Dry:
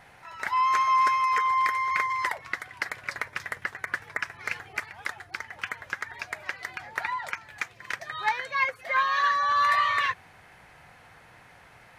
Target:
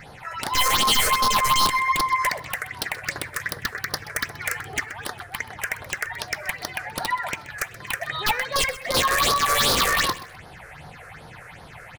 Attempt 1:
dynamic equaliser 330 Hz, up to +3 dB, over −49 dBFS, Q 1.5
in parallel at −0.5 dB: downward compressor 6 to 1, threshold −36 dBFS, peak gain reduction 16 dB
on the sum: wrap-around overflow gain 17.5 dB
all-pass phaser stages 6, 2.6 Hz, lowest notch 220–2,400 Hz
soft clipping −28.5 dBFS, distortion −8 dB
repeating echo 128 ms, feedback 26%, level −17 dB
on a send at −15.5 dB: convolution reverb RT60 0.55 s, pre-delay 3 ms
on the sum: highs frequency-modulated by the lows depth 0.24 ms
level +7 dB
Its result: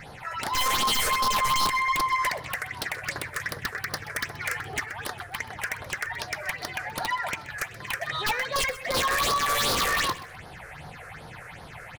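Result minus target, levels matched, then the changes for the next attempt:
soft clipping: distortion +11 dB
change: soft clipping −18.5 dBFS, distortion −19 dB

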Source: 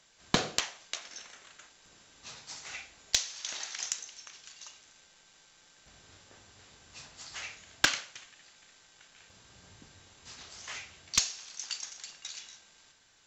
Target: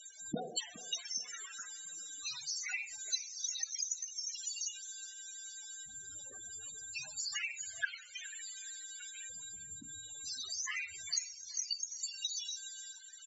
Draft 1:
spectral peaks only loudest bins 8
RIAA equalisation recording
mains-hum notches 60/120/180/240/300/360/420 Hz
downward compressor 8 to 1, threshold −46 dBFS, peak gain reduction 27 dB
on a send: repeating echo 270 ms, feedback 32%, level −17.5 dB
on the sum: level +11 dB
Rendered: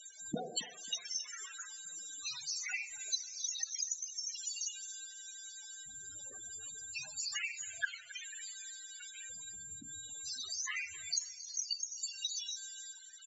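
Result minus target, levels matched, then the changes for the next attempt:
echo 147 ms early
change: repeating echo 417 ms, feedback 32%, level −17.5 dB

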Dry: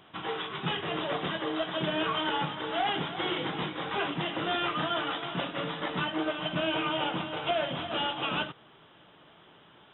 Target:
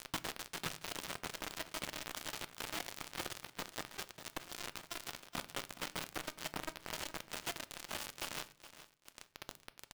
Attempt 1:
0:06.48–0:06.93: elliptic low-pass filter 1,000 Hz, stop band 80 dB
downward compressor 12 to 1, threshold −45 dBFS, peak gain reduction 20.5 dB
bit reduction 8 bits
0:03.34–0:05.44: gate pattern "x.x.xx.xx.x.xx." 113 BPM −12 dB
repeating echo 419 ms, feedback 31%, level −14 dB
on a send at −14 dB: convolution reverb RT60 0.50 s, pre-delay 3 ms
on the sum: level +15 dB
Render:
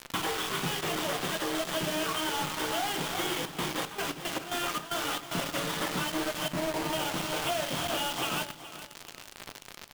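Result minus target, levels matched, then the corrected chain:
downward compressor: peak gain reduction −8 dB
0:06.48–0:06.93: elliptic low-pass filter 1,000 Hz, stop band 80 dB
downward compressor 12 to 1, threshold −53.5 dBFS, peak gain reduction 28 dB
bit reduction 8 bits
0:03.34–0:05.44: gate pattern "x.x.xx.xx.x.xx." 113 BPM −12 dB
repeating echo 419 ms, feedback 31%, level −14 dB
on a send at −14 dB: convolution reverb RT60 0.50 s, pre-delay 3 ms
on the sum: level +15 dB

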